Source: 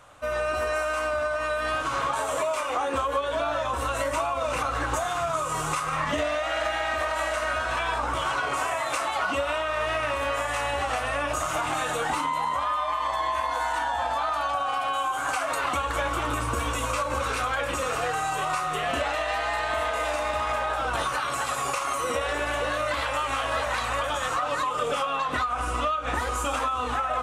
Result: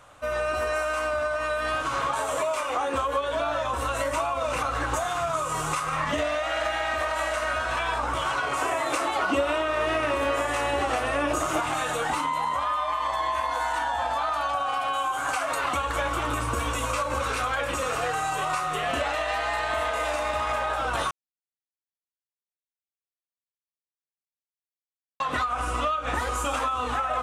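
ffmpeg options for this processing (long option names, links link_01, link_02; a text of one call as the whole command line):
ffmpeg -i in.wav -filter_complex "[0:a]asettb=1/sr,asplit=3[link_01][link_02][link_03];[link_01]atrim=end=8.624[link_04];[link_02]atrim=start=8.62:end=11.6,asetpts=PTS-STARTPTS,afade=type=in:duration=0.004:curve=qsin,afade=type=out:start_time=2.976:duration=0.004:curve=qsin,equalizer=frequency=340:width=1.6:gain=11.5[link_05];[link_03]atrim=start=11.596[link_06];[link_04][link_05]acrossfade=duration=0.004:curve1=hsin:curve2=qsin[link_07];[link_07][link_06]acrossfade=duration=0.004:curve1=qsin:curve2=hsin,asplit=3[link_08][link_09][link_10];[link_08]atrim=end=21.11,asetpts=PTS-STARTPTS,afade=type=out:start_time=21.106:duration=0.004:curve=hsin[link_11];[link_09]atrim=start=21.11:end=25.2,asetpts=PTS-STARTPTS,volume=0[link_12];[link_10]atrim=start=25.2,asetpts=PTS-STARTPTS,afade=type=in:duration=0.004:curve=hsin[link_13];[link_11][link_12][link_13]concat=n=3:v=0:a=1" out.wav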